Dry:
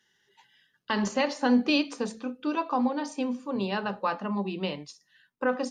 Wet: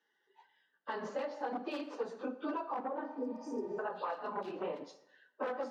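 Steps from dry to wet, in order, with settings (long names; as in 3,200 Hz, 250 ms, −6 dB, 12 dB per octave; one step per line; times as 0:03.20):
random phases in long frames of 50 ms
speech leveller within 3 dB 0.5 s
wave folding −20.5 dBFS
0:02.80–0:04.82: three-band delay without the direct sound mids, lows, highs 40/380 ms, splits 220/2,800 Hz
0:03.18–0:03.77: healed spectral selection 510–4,700 Hz before
three-way crossover with the lows and the highs turned down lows −22 dB, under 330 Hz, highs −24 dB, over 3,600 Hz
convolution reverb RT60 0.80 s, pre-delay 6 ms, DRR 10 dB
downward compressor, threshold −34 dBFS, peak gain reduction 9.5 dB
high-pass filter 120 Hz 12 dB per octave
parametric band 2,600 Hz −11 dB 1.4 octaves
level +1 dB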